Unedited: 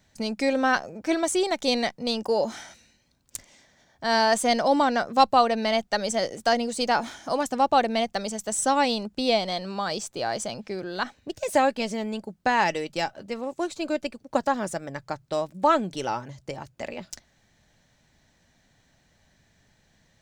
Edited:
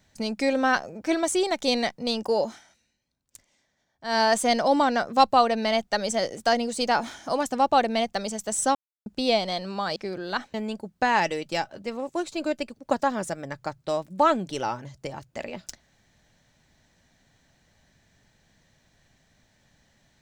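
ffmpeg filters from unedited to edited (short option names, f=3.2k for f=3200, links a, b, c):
-filter_complex "[0:a]asplit=7[a][b][c][d][e][f][g];[a]atrim=end=2.6,asetpts=PTS-STARTPTS,afade=t=out:st=2.4:d=0.2:silence=0.223872[h];[b]atrim=start=2.6:end=4.01,asetpts=PTS-STARTPTS,volume=-13dB[i];[c]atrim=start=4.01:end=8.75,asetpts=PTS-STARTPTS,afade=t=in:d=0.2:silence=0.223872,afade=t=out:st=4.736:d=0.004:c=hsin[j];[d]atrim=start=8.75:end=9.06,asetpts=PTS-STARTPTS,volume=0[k];[e]atrim=start=9.06:end=9.962,asetpts=PTS-STARTPTS,afade=t=in:d=0.004:c=hsin[l];[f]atrim=start=10.618:end=11.202[m];[g]atrim=start=11.978[n];[h][i][j][k][l]concat=n=5:v=0:a=1[o];[o][m]acrossfade=d=0.004:c1=hsin:c2=hsin[p];[p][n]acrossfade=d=0.004:c1=hsin:c2=hsin"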